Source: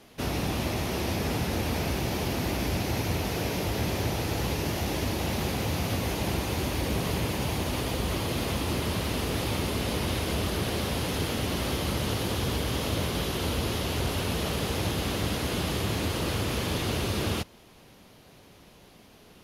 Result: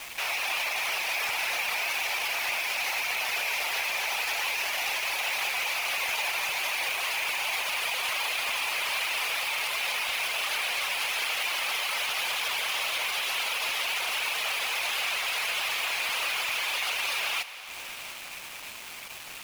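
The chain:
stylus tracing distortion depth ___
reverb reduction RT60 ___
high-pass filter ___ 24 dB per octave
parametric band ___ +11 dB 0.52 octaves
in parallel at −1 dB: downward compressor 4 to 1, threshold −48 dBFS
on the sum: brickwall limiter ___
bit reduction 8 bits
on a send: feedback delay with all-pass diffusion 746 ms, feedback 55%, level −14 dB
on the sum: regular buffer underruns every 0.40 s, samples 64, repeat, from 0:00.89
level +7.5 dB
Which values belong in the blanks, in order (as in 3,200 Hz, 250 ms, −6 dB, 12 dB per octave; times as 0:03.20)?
0.024 ms, 0.65 s, 760 Hz, 2,400 Hz, −28.5 dBFS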